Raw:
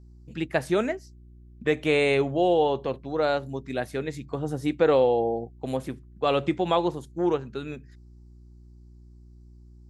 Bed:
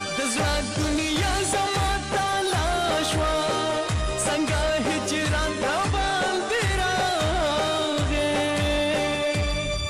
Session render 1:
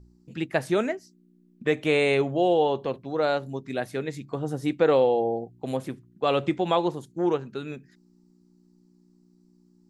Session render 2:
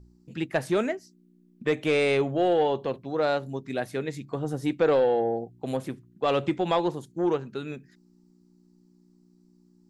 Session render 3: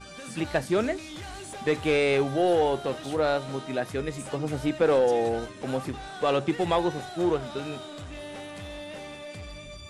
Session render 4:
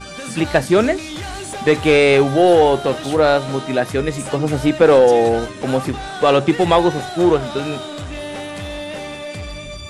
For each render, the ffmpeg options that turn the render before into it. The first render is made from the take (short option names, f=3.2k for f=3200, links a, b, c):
-af "bandreject=f=60:t=h:w=4,bandreject=f=120:t=h:w=4"
-af "asoftclip=type=tanh:threshold=-13.5dB"
-filter_complex "[1:a]volume=-16dB[a];[0:a][a]amix=inputs=2:normalize=0"
-af "volume=11dB"